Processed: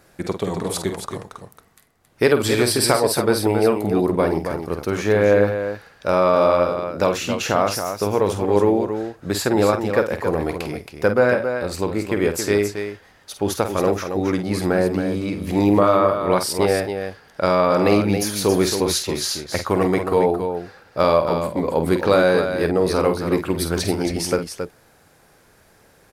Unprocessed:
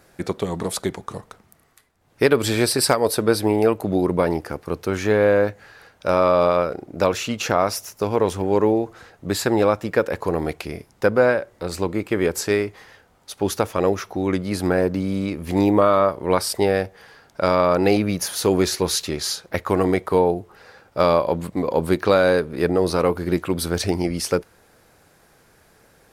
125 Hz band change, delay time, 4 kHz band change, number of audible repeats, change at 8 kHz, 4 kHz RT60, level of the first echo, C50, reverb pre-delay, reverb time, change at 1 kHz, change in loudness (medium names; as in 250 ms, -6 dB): +1.5 dB, 49 ms, +1.0 dB, 2, +1.0 dB, no reverb, -8.5 dB, no reverb, no reverb, no reverb, +1.0 dB, +1.0 dB